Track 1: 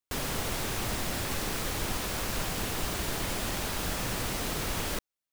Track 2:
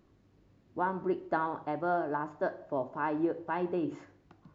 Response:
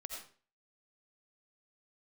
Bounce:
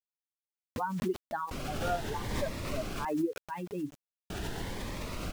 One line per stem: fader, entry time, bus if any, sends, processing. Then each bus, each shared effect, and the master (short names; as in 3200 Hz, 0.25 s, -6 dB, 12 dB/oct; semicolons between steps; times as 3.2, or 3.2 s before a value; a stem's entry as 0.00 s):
-3.5 dB, 1.40 s, muted 3.05–4.3, no send, cascading phaser rising 0.81 Hz
+1.0 dB, 0.00 s, no send, per-bin expansion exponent 3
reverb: off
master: LPF 2400 Hz 6 dB/oct; requantised 10-bit, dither none; backwards sustainer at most 37 dB/s